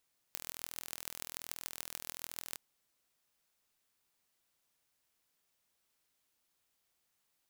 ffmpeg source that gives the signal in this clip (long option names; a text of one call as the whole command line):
ffmpeg -f lavfi -i "aevalsrc='0.282*eq(mod(n,1070),0)*(0.5+0.5*eq(mod(n,6420),0))':duration=2.22:sample_rate=44100" out.wav